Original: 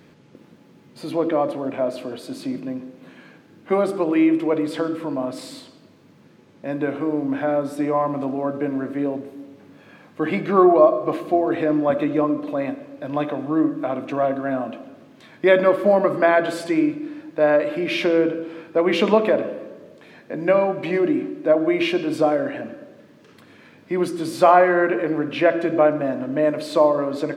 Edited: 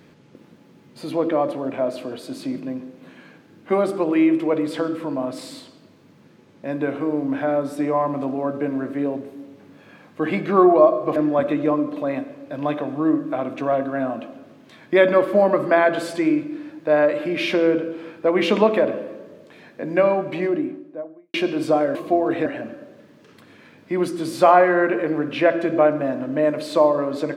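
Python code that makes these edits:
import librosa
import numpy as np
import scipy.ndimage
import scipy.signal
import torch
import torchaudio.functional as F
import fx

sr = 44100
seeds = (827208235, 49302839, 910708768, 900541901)

y = fx.studio_fade_out(x, sr, start_s=20.65, length_s=1.2)
y = fx.edit(y, sr, fx.move(start_s=11.16, length_s=0.51, to_s=22.46), tone=tone)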